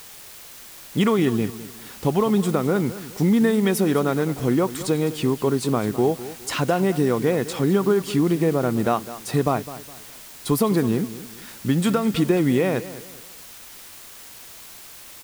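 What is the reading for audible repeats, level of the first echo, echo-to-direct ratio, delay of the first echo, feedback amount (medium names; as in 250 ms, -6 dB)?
3, -15.0 dB, -14.5 dB, 207 ms, 34%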